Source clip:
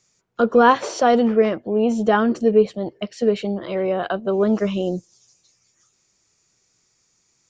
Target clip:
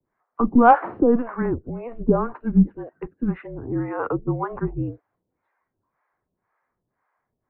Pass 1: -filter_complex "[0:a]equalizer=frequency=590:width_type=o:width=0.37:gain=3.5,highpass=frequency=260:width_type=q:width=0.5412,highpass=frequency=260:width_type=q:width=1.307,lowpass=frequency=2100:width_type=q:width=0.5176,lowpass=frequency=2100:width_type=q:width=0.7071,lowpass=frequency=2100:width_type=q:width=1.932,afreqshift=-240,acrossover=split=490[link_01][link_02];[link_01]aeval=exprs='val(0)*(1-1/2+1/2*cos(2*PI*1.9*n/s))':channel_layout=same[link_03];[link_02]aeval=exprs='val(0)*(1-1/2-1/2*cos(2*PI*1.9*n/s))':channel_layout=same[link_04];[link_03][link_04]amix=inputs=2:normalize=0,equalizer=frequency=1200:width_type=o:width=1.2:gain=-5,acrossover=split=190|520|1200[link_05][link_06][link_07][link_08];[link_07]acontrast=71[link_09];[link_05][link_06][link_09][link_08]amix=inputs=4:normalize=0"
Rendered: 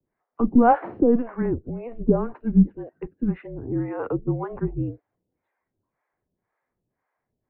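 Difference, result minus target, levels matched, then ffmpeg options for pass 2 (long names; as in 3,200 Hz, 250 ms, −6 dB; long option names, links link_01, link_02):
1,000 Hz band −3.0 dB
-filter_complex "[0:a]equalizer=frequency=590:width_type=o:width=0.37:gain=3.5,highpass=frequency=260:width_type=q:width=0.5412,highpass=frequency=260:width_type=q:width=1.307,lowpass=frequency=2100:width_type=q:width=0.5176,lowpass=frequency=2100:width_type=q:width=0.7071,lowpass=frequency=2100:width_type=q:width=1.932,afreqshift=-240,acrossover=split=490[link_01][link_02];[link_01]aeval=exprs='val(0)*(1-1/2+1/2*cos(2*PI*1.9*n/s))':channel_layout=same[link_03];[link_02]aeval=exprs='val(0)*(1-1/2-1/2*cos(2*PI*1.9*n/s))':channel_layout=same[link_04];[link_03][link_04]amix=inputs=2:normalize=0,equalizer=frequency=1200:width_type=o:width=1.2:gain=4,acrossover=split=190|520|1200[link_05][link_06][link_07][link_08];[link_07]acontrast=71[link_09];[link_05][link_06][link_09][link_08]amix=inputs=4:normalize=0"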